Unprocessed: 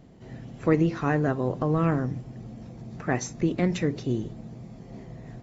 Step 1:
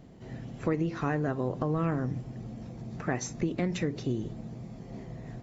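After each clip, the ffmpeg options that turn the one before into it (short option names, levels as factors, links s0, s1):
-af "acompressor=threshold=0.0447:ratio=3"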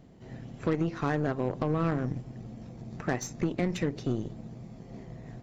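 -af "aeval=exprs='0.15*(cos(1*acos(clip(val(0)/0.15,-1,1)))-cos(1*PI/2))+0.0133*(cos(5*acos(clip(val(0)/0.15,-1,1)))-cos(5*PI/2))+0.015*(cos(7*acos(clip(val(0)/0.15,-1,1)))-cos(7*PI/2))+0.00422*(cos(8*acos(clip(val(0)/0.15,-1,1)))-cos(8*PI/2))':c=same"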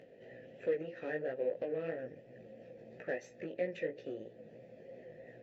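-filter_complex "[0:a]asplit=3[s0][s1][s2];[s0]bandpass=f=530:t=q:w=8,volume=1[s3];[s1]bandpass=f=1840:t=q:w=8,volume=0.501[s4];[s2]bandpass=f=2480:t=q:w=8,volume=0.355[s5];[s3][s4][s5]amix=inputs=3:normalize=0,asplit=2[s6][s7];[s7]acompressor=mode=upward:threshold=0.00631:ratio=2.5,volume=0.891[s8];[s6][s8]amix=inputs=2:normalize=0,flanger=delay=16:depth=3.5:speed=3,volume=1.12"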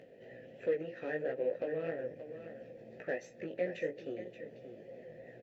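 -af "aecho=1:1:578:0.282,volume=1.12"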